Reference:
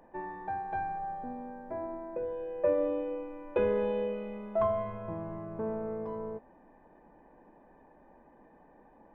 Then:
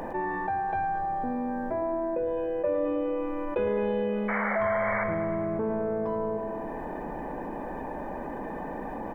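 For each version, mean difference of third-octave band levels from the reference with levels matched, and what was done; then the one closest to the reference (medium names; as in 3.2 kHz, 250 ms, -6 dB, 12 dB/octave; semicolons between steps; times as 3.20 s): 6.0 dB: painted sound noise, 4.28–5.04 s, 470–2300 Hz -34 dBFS; feedback delay 106 ms, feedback 59%, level -11.5 dB; level flattener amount 70%; trim -1.5 dB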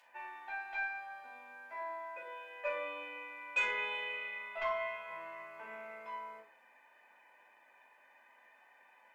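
11.5 dB: resonant high-pass 2.4 kHz, resonance Q 2.1; in parallel at -6 dB: sine folder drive 4 dB, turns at -29.5 dBFS; on the sum: simulated room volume 280 m³, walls furnished, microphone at 6.8 m; trim -7 dB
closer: first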